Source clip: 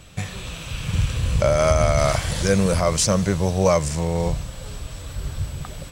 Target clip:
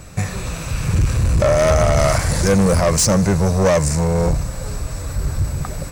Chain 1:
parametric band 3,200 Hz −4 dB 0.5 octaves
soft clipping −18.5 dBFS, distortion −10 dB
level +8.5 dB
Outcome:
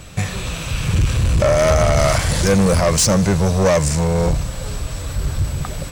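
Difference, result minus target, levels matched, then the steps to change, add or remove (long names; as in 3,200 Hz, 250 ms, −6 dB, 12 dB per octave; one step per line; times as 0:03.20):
4,000 Hz band +3.0 dB
change: parametric band 3,200 Hz −15.5 dB 0.5 octaves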